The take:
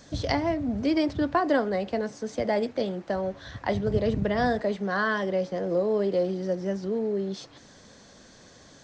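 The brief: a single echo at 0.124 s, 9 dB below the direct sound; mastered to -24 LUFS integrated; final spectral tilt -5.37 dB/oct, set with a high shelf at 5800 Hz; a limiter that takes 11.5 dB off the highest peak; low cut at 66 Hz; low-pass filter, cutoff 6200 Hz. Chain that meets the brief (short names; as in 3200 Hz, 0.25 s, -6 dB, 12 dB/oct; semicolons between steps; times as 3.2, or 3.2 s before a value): HPF 66 Hz; LPF 6200 Hz; high shelf 5800 Hz +4.5 dB; limiter -22.5 dBFS; echo 0.124 s -9 dB; gain +7 dB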